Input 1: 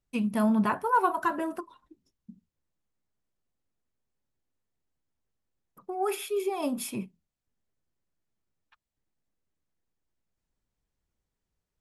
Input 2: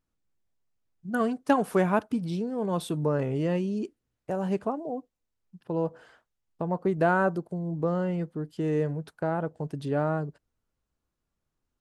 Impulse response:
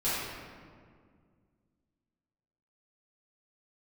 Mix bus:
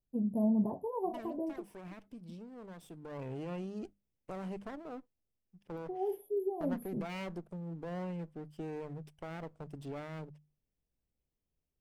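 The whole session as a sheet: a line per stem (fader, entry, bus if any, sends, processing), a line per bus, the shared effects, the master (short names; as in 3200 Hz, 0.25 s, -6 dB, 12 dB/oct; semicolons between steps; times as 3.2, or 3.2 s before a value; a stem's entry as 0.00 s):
-4.5 dB, 0.00 s, no send, inverse Chebyshev band-stop 1300–8900 Hz, stop band 40 dB
2.95 s -18 dB -> 3.23 s -10 dB, 0.00 s, no send, minimum comb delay 0.37 ms; notches 50/100/150/200 Hz; limiter -22.5 dBFS, peak gain reduction 11 dB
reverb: off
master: dry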